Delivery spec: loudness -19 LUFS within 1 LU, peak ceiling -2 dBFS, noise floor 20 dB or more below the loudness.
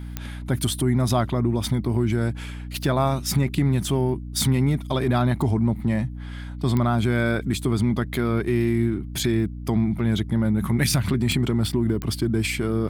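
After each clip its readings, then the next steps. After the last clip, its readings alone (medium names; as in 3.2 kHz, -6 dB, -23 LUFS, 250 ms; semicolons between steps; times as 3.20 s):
clicks found 4; hum 60 Hz; highest harmonic 300 Hz; hum level -31 dBFS; loudness -23.0 LUFS; peak level -8.5 dBFS; loudness target -19.0 LUFS
-> de-click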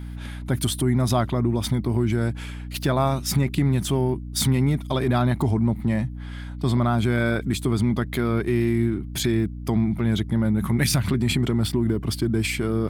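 clicks found 0; hum 60 Hz; highest harmonic 300 Hz; hum level -31 dBFS
-> de-hum 60 Hz, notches 5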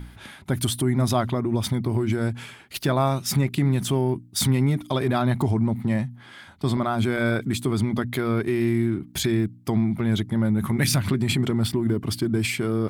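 hum not found; loudness -24.0 LUFS; peak level -7.5 dBFS; loudness target -19.0 LUFS
-> trim +5 dB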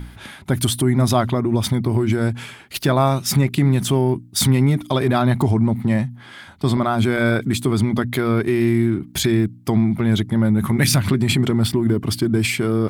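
loudness -19.0 LUFS; peak level -2.5 dBFS; noise floor -42 dBFS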